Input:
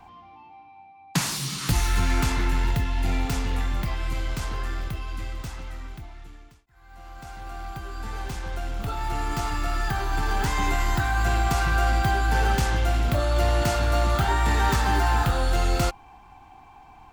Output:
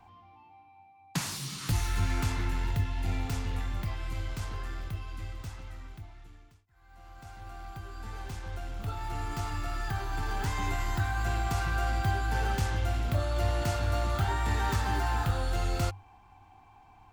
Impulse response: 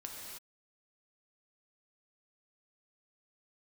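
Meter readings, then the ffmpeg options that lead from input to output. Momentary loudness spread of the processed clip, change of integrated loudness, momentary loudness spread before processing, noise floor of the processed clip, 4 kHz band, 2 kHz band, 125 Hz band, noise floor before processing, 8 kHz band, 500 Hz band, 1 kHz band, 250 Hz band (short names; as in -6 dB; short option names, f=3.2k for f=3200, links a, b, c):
14 LU, -7.0 dB, 14 LU, -58 dBFS, -8.0 dB, -8.0 dB, -4.5 dB, -50 dBFS, -8.0 dB, -8.0 dB, -8.0 dB, -8.0 dB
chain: -af "equalizer=f=97:t=o:w=0.21:g=13.5,volume=-8dB"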